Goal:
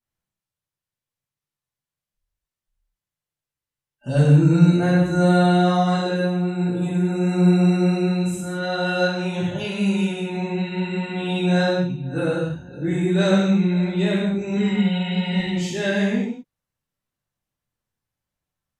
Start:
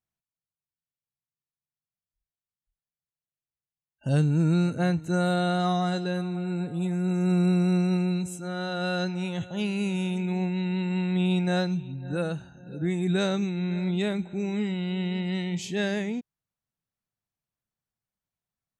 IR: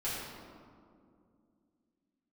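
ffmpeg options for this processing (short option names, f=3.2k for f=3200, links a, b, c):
-filter_complex "[0:a]asettb=1/sr,asplit=3[a][b][c];[a]atrim=end=14.564[d];[b]atrim=start=14.56:end=15.39,asetpts=PTS-STARTPTS,afade=t=in:d=0.004:c=qsin,afade=t=out:st=0.826:d=0.004:c=qsin,aecho=1:1:4.2:0.92,atrim=end_sample=36603[e];[c]atrim=start=15.386[f];[d][e]acrossfade=d=0.004:c1=hsin:c2=qsin[g];[g][f]acrossfade=d=0.004:c1=qsin:c2=hsin[h];[1:a]atrim=start_sample=2205,afade=t=out:st=0.2:d=0.01,atrim=end_sample=9261,asetrate=29547,aresample=44100[i];[h][i]afir=irnorm=-1:irlink=0"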